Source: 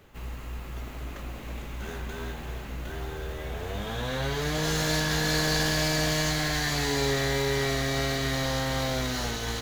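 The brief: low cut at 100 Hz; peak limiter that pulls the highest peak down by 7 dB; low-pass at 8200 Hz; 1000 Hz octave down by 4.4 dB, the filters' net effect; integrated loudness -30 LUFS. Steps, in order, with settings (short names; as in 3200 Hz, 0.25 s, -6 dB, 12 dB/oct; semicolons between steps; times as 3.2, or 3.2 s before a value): HPF 100 Hz; LPF 8200 Hz; bell 1000 Hz -6 dB; gain +2.5 dB; limiter -20 dBFS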